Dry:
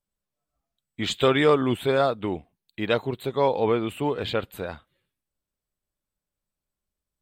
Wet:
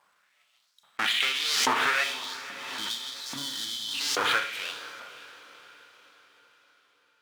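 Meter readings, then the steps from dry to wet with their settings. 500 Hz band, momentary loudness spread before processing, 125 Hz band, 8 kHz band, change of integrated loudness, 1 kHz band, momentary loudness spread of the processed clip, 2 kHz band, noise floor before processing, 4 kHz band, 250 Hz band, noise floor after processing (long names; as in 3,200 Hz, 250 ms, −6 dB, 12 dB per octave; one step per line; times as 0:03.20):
−18.0 dB, 14 LU, −23.0 dB, can't be measured, −3.0 dB, −2.5 dB, 18 LU, +5.0 dB, below −85 dBFS, +6.5 dB, −16.5 dB, −69 dBFS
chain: each half-wave held at its own peak
high-pass filter 49 Hz
gain on a spectral selection 0:02.04–0:03.94, 340–3,000 Hz −27 dB
noise gate with hold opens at −34 dBFS
RIAA equalisation playback
downward compressor 3 to 1, threshold −17 dBFS, peak gain reduction 9.5 dB
four-comb reverb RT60 1.1 s, combs from 27 ms, DRR 3.5 dB
auto-filter high-pass saw up 1.2 Hz 970–5,900 Hz
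feedback delay with all-pass diffusion 538 ms, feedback 49%, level −14.5 dB
background raised ahead of every attack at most 26 dB per second
level +4 dB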